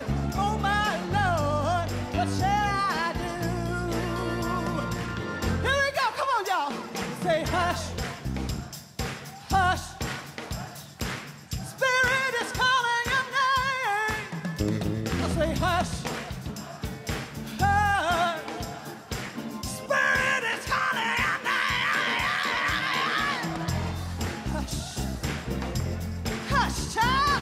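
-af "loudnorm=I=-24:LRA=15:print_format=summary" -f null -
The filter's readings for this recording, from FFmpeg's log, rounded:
Input Integrated:    -27.1 LUFS
Input True Peak:     -11.5 dBTP
Input LRA:             4.2 LU
Input Threshold:     -37.2 LUFS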